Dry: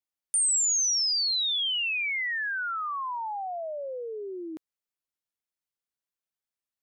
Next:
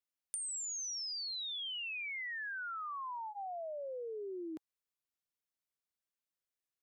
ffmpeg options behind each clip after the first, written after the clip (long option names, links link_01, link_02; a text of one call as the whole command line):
ffmpeg -i in.wav -filter_complex "[0:a]bandreject=frequency=830:width=12,acrossover=split=170[link_01][link_02];[link_02]acompressor=threshold=-37dB:ratio=6[link_03];[link_01][link_03]amix=inputs=2:normalize=0,volume=-3.5dB" out.wav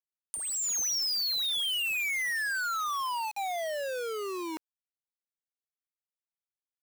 ffmpeg -i in.wav -af "lowshelf=frequency=400:gain=-5,aeval=exprs='val(0)*gte(abs(val(0)),0.00631)':channel_layout=same,dynaudnorm=framelen=110:gausssize=9:maxgain=11dB" out.wav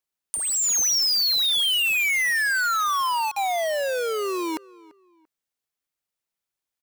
ffmpeg -i in.wav -filter_complex "[0:a]asplit=2[link_01][link_02];[link_02]adelay=341,lowpass=frequency=2400:poles=1,volume=-21.5dB,asplit=2[link_03][link_04];[link_04]adelay=341,lowpass=frequency=2400:poles=1,volume=0.31[link_05];[link_01][link_03][link_05]amix=inputs=3:normalize=0,volume=8.5dB" out.wav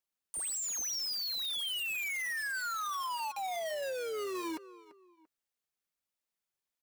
ffmpeg -i in.wav -af "flanger=delay=3:depth=2.6:regen=-46:speed=1.3:shape=triangular,alimiter=level_in=2dB:limit=-24dB:level=0:latency=1:release=44,volume=-2dB,asoftclip=type=tanh:threshold=-33.5dB" out.wav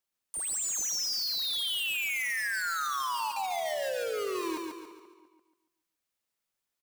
ffmpeg -i in.wav -af "aecho=1:1:141|282|423|564|705:0.631|0.259|0.106|0.0435|0.0178,volume=2.5dB" out.wav